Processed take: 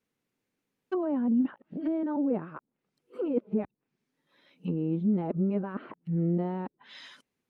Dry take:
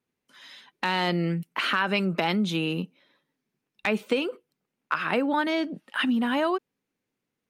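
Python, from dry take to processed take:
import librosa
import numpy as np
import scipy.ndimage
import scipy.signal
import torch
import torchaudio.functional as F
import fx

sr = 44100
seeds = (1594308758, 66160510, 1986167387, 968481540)

y = np.flip(x).copy()
y = fx.env_lowpass_down(y, sr, base_hz=430.0, full_db=-25.5)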